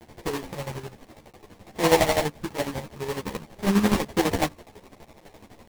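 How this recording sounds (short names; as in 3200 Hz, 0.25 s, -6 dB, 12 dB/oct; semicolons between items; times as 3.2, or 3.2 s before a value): a quantiser's noise floor 8-bit, dither triangular; chopped level 12 Hz, depth 65%, duty 40%; aliases and images of a low sample rate 1400 Hz, jitter 20%; a shimmering, thickened sound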